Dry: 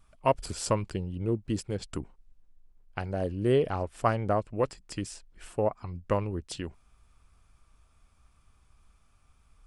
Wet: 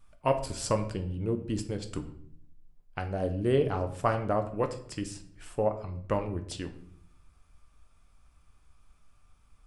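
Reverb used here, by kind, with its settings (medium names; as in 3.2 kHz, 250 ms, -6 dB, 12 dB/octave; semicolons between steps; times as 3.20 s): simulated room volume 110 m³, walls mixed, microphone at 0.38 m; trim -1.5 dB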